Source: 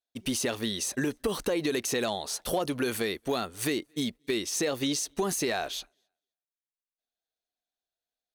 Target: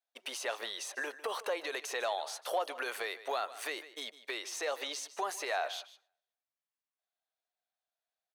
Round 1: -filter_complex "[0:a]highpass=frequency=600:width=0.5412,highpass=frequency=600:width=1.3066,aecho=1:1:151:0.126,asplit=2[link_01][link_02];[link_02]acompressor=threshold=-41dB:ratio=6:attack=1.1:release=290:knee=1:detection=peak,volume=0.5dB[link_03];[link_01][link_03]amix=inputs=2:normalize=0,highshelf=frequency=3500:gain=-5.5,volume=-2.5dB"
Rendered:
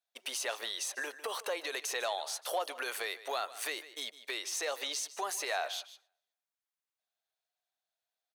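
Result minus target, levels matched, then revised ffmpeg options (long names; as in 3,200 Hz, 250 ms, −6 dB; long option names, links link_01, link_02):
downward compressor: peak gain reduction +6.5 dB; 8,000 Hz band +4.0 dB
-filter_complex "[0:a]highpass=frequency=600:width=0.5412,highpass=frequency=600:width=1.3066,aecho=1:1:151:0.126,asplit=2[link_01][link_02];[link_02]acompressor=threshold=-33dB:ratio=6:attack=1.1:release=290:knee=1:detection=peak,volume=0.5dB[link_03];[link_01][link_03]amix=inputs=2:normalize=0,highshelf=frequency=3500:gain=-14,volume=-2.5dB"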